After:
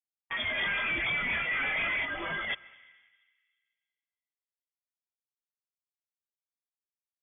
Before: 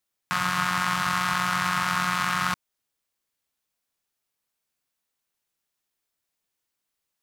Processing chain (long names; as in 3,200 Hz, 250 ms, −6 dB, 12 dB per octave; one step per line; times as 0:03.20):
noise reduction from a noise print of the clip's start 23 dB
leveller curve on the samples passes 5
0:02.05–0:02.50: phaser with its sweep stopped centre 400 Hz, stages 4
soft clipping −27 dBFS, distortion −16 dB
dense smooth reverb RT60 1.9 s, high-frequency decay 0.5×, pre-delay 120 ms, DRR 19 dB
voice inversion scrambler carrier 3,400 Hz
level −1 dB